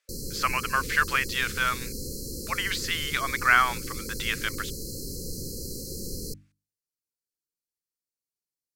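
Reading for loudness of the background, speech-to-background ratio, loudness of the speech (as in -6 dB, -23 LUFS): -35.5 LUFS, 9.5 dB, -26.0 LUFS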